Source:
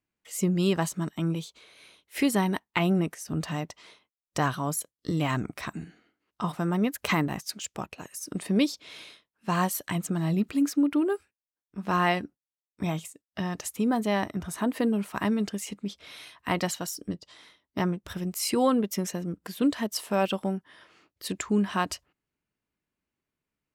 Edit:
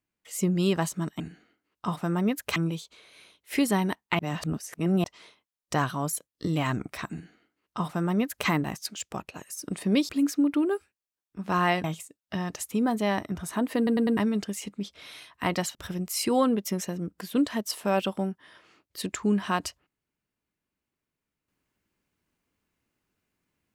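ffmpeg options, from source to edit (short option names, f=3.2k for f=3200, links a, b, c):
-filter_complex "[0:a]asplit=12[a][b][c][d][e][f][g][h][i][j][k][l];[a]atrim=end=1.202[m];[b]atrim=start=5.758:end=7.122[n];[c]atrim=start=1.198:end=2.832[o];[d]atrim=start=2.828:end=3.682,asetpts=PTS-STARTPTS,areverse[p];[e]atrim=start=3.678:end=8.732[q];[f]atrim=start=10.478:end=12.232[r];[g]atrim=start=12.888:end=14.922[s];[h]atrim=start=14.818:end=14.922[t];[i]atrim=start=14.818:end=14.922[u];[j]atrim=start=14.818:end=14.922[v];[k]atrim=start=15.218:end=16.802[w];[l]atrim=start=18.008[x];[m][n]acrossfade=d=0.004:c1=hsin:c2=hsin[y];[y][o]acrossfade=d=0.004:c1=hsin:c2=hsin[z];[z][p]acrossfade=d=0.004:c1=hsin:c2=hsin[aa];[aa][q]acrossfade=d=0.004:c1=hsin:c2=hsin[ab];[ab][r]acrossfade=d=0.004:c1=hsin:c2=hsin[ac];[ac][s]acrossfade=d=0.004:c1=hsin:c2=hsin[ad];[ad][t]acrossfade=d=0.004:c1=hsin:c2=hsin[ae];[ae][u]acrossfade=d=0.004:c1=hsin:c2=hsin[af];[af][v]acrossfade=d=0.004:c1=hsin:c2=hsin[ag];[ag][w]acrossfade=d=0.004:c1=hsin:c2=hsin[ah];[ah][x]acrossfade=d=0.004:c1=hsin:c2=hsin"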